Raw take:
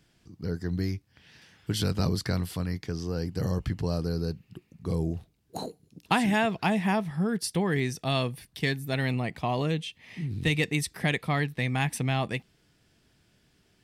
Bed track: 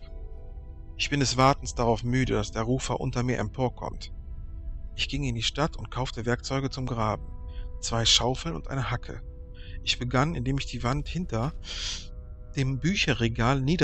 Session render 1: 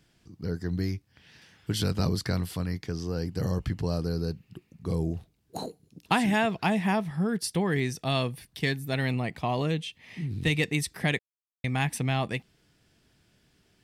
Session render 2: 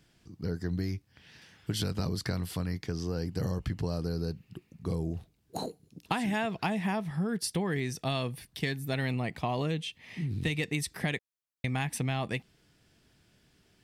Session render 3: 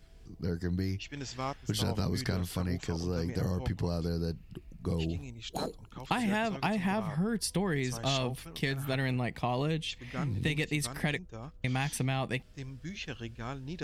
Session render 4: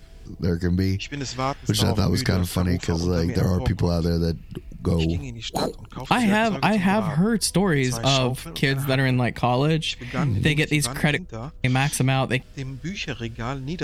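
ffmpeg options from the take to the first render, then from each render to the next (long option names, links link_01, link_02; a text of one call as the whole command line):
ffmpeg -i in.wav -filter_complex "[0:a]asplit=3[link_01][link_02][link_03];[link_01]atrim=end=11.19,asetpts=PTS-STARTPTS,afade=type=out:start_time=11.186:duration=0.004:curve=hsin[link_04];[link_02]atrim=start=11.19:end=11.64,asetpts=PTS-STARTPTS,volume=0[link_05];[link_03]atrim=start=11.64,asetpts=PTS-STARTPTS,afade=type=in:duration=0.004:curve=hsin[link_06];[link_04][link_05][link_06]concat=n=3:v=0:a=1" out.wav
ffmpeg -i in.wav -af "acompressor=threshold=-27dB:ratio=6" out.wav
ffmpeg -i in.wav -i bed.wav -filter_complex "[1:a]volume=-15.5dB[link_01];[0:a][link_01]amix=inputs=2:normalize=0" out.wav
ffmpeg -i in.wav -af "volume=10.5dB" out.wav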